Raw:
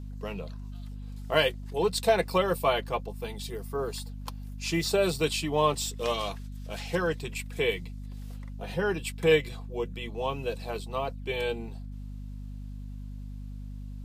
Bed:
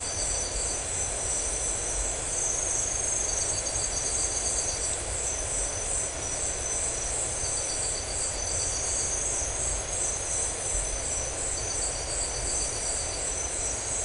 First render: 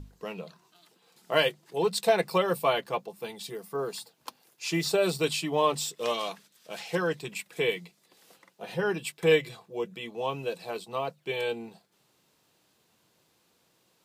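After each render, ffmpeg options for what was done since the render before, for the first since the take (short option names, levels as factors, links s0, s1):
-af "bandreject=f=50:t=h:w=6,bandreject=f=100:t=h:w=6,bandreject=f=150:t=h:w=6,bandreject=f=200:t=h:w=6,bandreject=f=250:t=h:w=6"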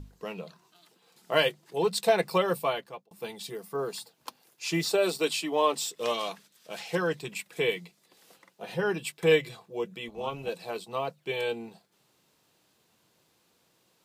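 -filter_complex "[0:a]asettb=1/sr,asplit=3[s0][s1][s2];[s0]atrim=end=4.844[s3];[s1]atrim=start=4.84:end=5.96,asetpts=PTS-STARTPTS,afade=t=in:d=0.004:c=qsin,afade=t=out:st=1.116:d=0.004:c=qsin,highpass=f=220:w=0.5412,highpass=f=220:w=1.3066[s4];[s2]atrim=start=5.956[s5];[s3][s4]acrossfade=d=0.004:c1=hsin:c2=qsin[s6];[s6][s5]acrossfade=d=0.004:c1=qsin:c2=hsin,asettb=1/sr,asplit=3[s7][s8][s9];[s7]atrim=end=10.084[s10];[s8]atrim=start=10.08:end=10.49,asetpts=PTS-STARTPTS,afade=t=in:d=0.004:c=qsin,afade=t=out:st=0.406:d=0.004:c=qsin,tremolo=f=290:d=0.571[s11];[s9]atrim=start=10.486[s12];[s10][s11]acrossfade=d=0.004:c1=hsin:c2=qsin[s13];[s13][s12]acrossfade=d=0.004:c1=qsin:c2=hsin,asplit=2[s14][s15];[s14]atrim=end=3.11,asetpts=PTS-STARTPTS,afade=t=out:st=2.49:d=0.62[s16];[s15]atrim=start=3.11,asetpts=PTS-STARTPTS,afade=t=in:d=0.004:c=hsin[s17];[s16][s17]concat=n=2:v=0:a=1"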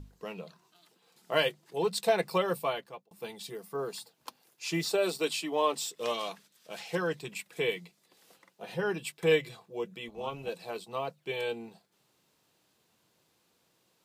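-af "volume=0.708"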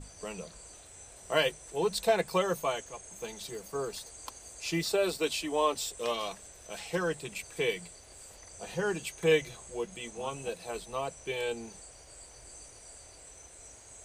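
-filter_complex "[1:a]volume=0.0891[s0];[0:a][s0]amix=inputs=2:normalize=0"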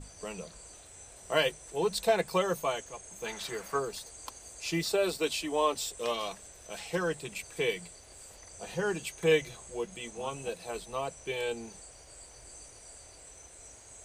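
-filter_complex "[0:a]asplit=3[s0][s1][s2];[s0]afade=t=out:st=3.25:d=0.02[s3];[s1]equalizer=f=1500:t=o:w=2:g=12.5,afade=t=in:st=3.25:d=0.02,afade=t=out:st=3.78:d=0.02[s4];[s2]afade=t=in:st=3.78:d=0.02[s5];[s3][s4][s5]amix=inputs=3:normalize=0"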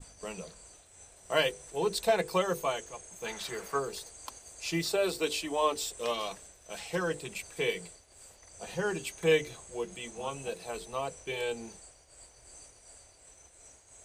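-af "agate=range=0.0224:threshold=0.00501:ratio=3:detection=peak,bandreject=f=50:t=h:w=6,bandreject=f=100:t=h:w=6,bandreject=f=150:t=h:w=6,bandreject=f=200:t=h:w=6,bandreject=f=250:t=h:w=6,bandreject=f=300:t=h:w=6,bandreject=f=350:t=h:w=6,bandreject=f=400:t=h:w=6,bandreject=f=450:t=h:w=6,bandreject=f=500:t=h:w=6"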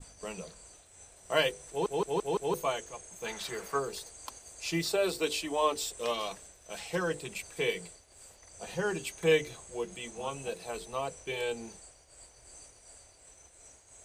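-filter_complex "[0:a]asplit=6[s0][s1][s2][s3][s4][s5];[s0]atrim=end=1.862[s6];[s1]atrim=start=1.688:end=1.862[s7];[s2]atrim=start=1.688:end=1.862[s8];[s3]atrim=start=1.688:end=1.862[s9];[s4]atrim=start=1.688:end=1.862[s10];[s5]atrim=start=2.538[s11];[s6][s7]acrossfade=d=0.004:c1=hsin:c2=hsin[s12];[s12][s8]acrossfade=d=0.004:c1=hsin:c2=hsin[s13];[s13][s9]acrossfade=d=0.004:c1=hsin:c2=hsin[s14];[s14][s10]acrossfade=d=0.004:c1=hsin:c2=hsin[s15];[s15][s11]acrossfade=d=0.004:c1=hsin:c2=hsin"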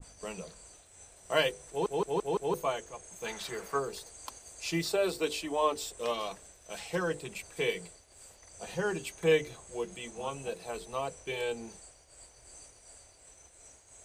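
-af "adynamicequalizer=threshold=0.00398:dfrequency=1900:dqfactor=0.7:tfrequency=1900:tqfactor=0.7:attack=5:release=100:ratio=0.375:range=2:mode=cutabove:tftype=highshelf"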